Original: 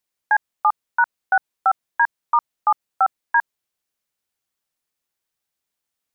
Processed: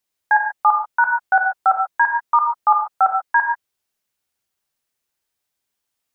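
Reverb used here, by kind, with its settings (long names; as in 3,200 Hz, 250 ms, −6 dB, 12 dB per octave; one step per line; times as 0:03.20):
reverb whose tail is shaped and stops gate 160 ms flat, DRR 2.5 dB
level +1 dB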